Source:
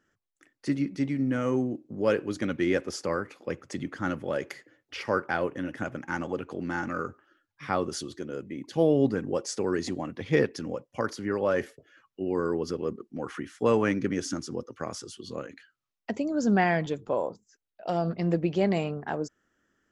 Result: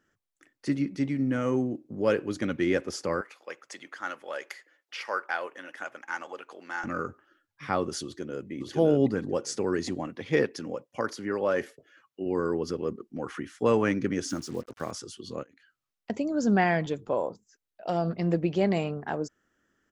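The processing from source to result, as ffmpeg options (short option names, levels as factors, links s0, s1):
-filter_complex "[0:a]asettb=1/sr,asplit=3[s0][s1][s2];[s0]atrim=end=3.214[s3];[s1]atrim=start=3.21:end=6.84,asetpts=PTS-STARTPTS,afade=t=in:d=0.004:c=qsin,afade=t=out:st=3.626:d=0.004:c=qsin,highpass=760[s4];[s2]atrim=start=6.836[s5];[s3][s4]acrossfade=d=0.004:c1=hsin:c2=qsin[s6];[s6][s5]acrossfade=d=0.004:c1=qsin:c2=hsin,asplit=2[s7][s8];[s8]afade=t=in:st=8.04:d=0.01,afade=t=out:st=8.51:d=0.01,aecho=0:1:560|1120|1680:0.944061|0.141609|0.0212414[s9];[s7][s9]amix=inputs=2:normalize=0,asettb=1/sr,asplit=3[s10][s11][s12];[s10]atrim=end=10.074[s13];[s11]atrim=start=10.07:end=12.26,asetpts=PTS-STARTPTS,afade=t=in:d=0.004:c=qsin,afade=t=out:st=2.186:d=0.004:c=qsin,highpass=f=190:p=1[s14];[s12]atrim=start=12.256[s15];[s13][s14]acrossfade=d=0.004:c1=hsin:c2=qsin[s16];[s16][s15]acrossfade=d=0.004:c1=qsin:c2=hsin,asettb=1/sr,asplit=3[s17][s18][s19];[s17]atrim=end=14.294[s20];[s18]atrim=start=14.29:end=14.91,asetpts=PTS-STARTPTS,afade=t=in:d=0.004:c=qsin,afade=t=out:st=0.616:d=0.004:c=qsin,acrusher=bits=7:mix=0:aa=0.5[s21];[s19]atrim=start=14.906[s22];[s20][s21]acrossfade=d=0.004:c1=hsin:c2=qsin[s23];[s23][s22]acrossfade=d=0.004:c1=qsin:c2=hsin,asettb=1/sr,asplit=3[s24][s25][s26];[s24]atrim=end=15.434[s27];[s25]atrim=start=15.43:end=16.1,asetpts=PTS-STARTPTS,afade=t=in:d=0.004:c=qsin,afade=t=out:st=0.666:d=0.004:c=qsin,acompressor=threshold=0.00178:ratio=12:attack=3.2:release=140:knee=1:detection=peak[s28];[s26]atrim=start=16.096[s29];[s27][s28]acrossfade=d=0.004:c1=hsin:c2=qsin[s30];[s30][s29]acrossfade=d=0.004:c1=qsin:c2=hsin"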